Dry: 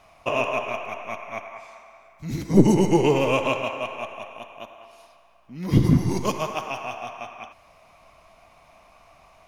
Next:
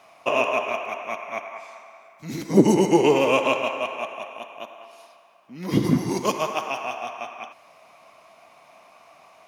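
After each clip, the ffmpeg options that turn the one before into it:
-af "highpass=230,volume=2.5dB"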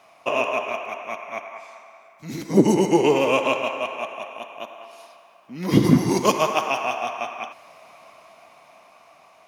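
-af "dynaudnorm=f=400:g=9:m=11.5dB,volume=-1dB"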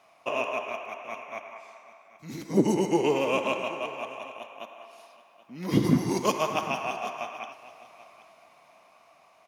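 -af "aecho=1:1:780:0.126,volume=-6.5dB"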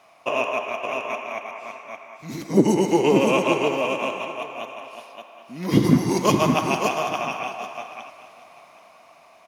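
-af "aecho=1:1:568:0.562,volume=5.5dB"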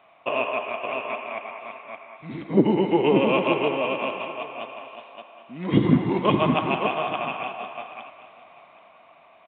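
-af "aresample=8000,aresample=44100,volume=-1.5dB"

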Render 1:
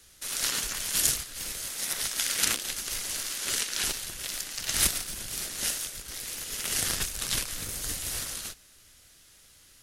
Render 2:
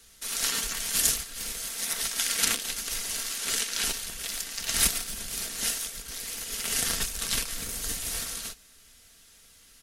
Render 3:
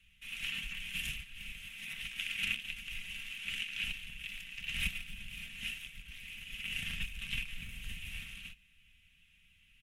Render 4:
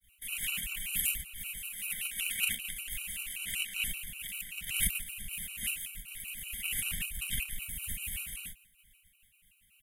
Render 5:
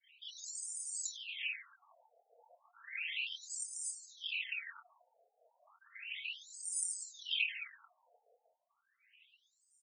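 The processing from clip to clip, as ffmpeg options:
-af "aecho=1:1:4.4:0.47"
-af "firequalizer=gain_entry='entry(170,0);entry(340,-24);entry(1400,-15);entry(2600,8);entry(4400,-23);entry(15000,-19)':delay=0.05:min_phase=1,volume=-4dB"
-af "agate=range=-33dB:threshold=-60dB:ratio=3:detection=peak,aexciter=amount=8.2:drive=6.5:freq=7.9k,afftfilt=real='re*gt(sin(2*PI*5.2*pts/sr)*(1-2*mod(floor(b*sr/1024/760),2)),0)':imag='im*gt(sin(2*PI*5.2*pts/sr)*(1-2*mod(floor(b*sr/1024/760),2)),0)':win_size=1024:overlap=0.75,volume=4dB"
-filter_complex "[0:a]asplit=2[a][b];[b]adelay=25,volume=-7.5dB[c];[a][c]amix=inputs=2:normalize=0,aecho=1:1:333:0.211,afftfilt=real='re*between(b*sr/1024,600*pow(6800/600,0.5+0.5*sin(2*PI*0.33*pts/sr))/1.41,600*pow(6800/600,0.5+0.5*sin(2*PI*0.33*pts/sr))*1.41)':imag='im*between(b*sr/1024,600*pow(6800/600,0.5+0.5*sin(2*PI*0.33*pts/sr))/1.41,600*pow(6800/600,0.5+0.5*sin(2*PI*0.33*pts/sr))*1.41)':win_size=1024:overlap=0.75,volume=5dB"

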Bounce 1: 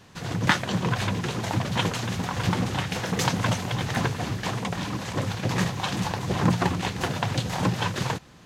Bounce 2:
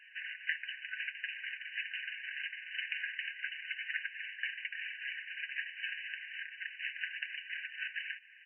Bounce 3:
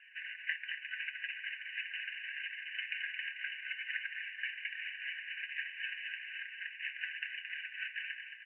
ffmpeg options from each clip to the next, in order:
-af "acompressor=threshold=-31dB:ratio=6,aecho=1:1:6.1:0.46,afftfilt=real='re*between(b*sr/4096,1500,3000)':imag='im*between(b*sr/4096,1500,3000)':win_size=4096:overlap=0.75,volume=3.5dB"
-af "acrusher=bits=5:mode=log:mix=0:aa=0.000001,asuperpass=centerf=1800:order=20:qfactor=0.67,aecho=1:1:221|442|663|884|1105:0.447|0.201|0.0905|0.0407|0.0183,volume=-1.5dB"

